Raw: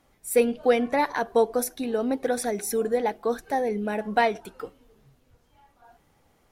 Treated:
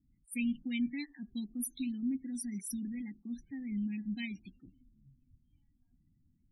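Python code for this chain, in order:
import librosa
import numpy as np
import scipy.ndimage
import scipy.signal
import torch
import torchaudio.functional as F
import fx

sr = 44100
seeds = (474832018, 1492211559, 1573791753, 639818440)

y = fx.spec_topn(x, sr, count=32)
y = scipy.signal.sosfilt(scipy.signal.cheby2(4, 40, [430.0, 1500.0], 'bandstop', fs=sr, output='sos'), y)
y = fx.env_lowpass(y, sr, base_hz=1300.0, full_db=-30.0)
y = F.gain(torch.from_numpy(y), -3.5).numpy()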